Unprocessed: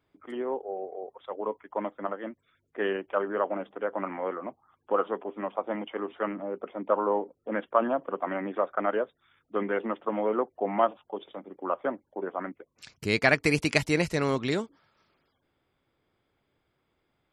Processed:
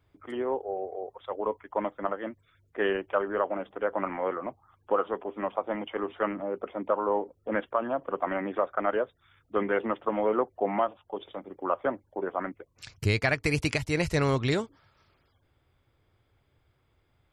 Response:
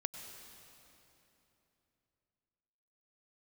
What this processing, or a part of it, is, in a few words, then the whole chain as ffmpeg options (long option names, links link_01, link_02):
car stereo with a boomy subwoofer: -af "lowshelf=frequency=140:width_type=q:width=1.5:gain=9,alimiter=limit=-16dB:level=0:latency=1:release=445,volume=2.5dB"